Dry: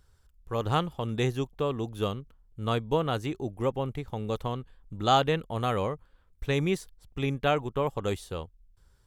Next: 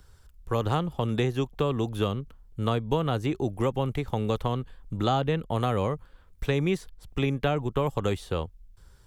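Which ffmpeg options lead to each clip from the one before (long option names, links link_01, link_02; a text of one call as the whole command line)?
ffmpeg -i in.wav -filter_complex "[0:a]acrossover=split=250|920|3800[link_01][link_02][link_03][link_04];[link_01]acompressor=threshold=-36dB:ratio=4[link_05];[link_02]acompressor=threshold=-36dB:ratio=4[link_06];[link_03]acompressor=threshold=-43dB:ratio=4[link_07];[link_04]acompressor=threshold=-57dB:ratio=4[link_08];[link_05][link_06][link_07][link_08]amix=inputs=4:normalize=0,volume=8dB" out.wav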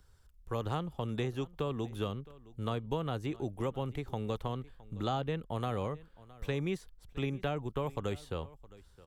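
ffmpeg -i in.wav -af "aecho=1:1:665:0.0944,volume=-8.5dB" out.wav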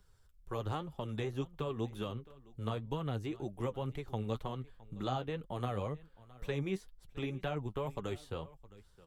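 ffmpeg -i in.wav -af "flanger=delay=4.7:depth=6:regen=36:speed=2:shape=triangular,volume=1dB" out.wav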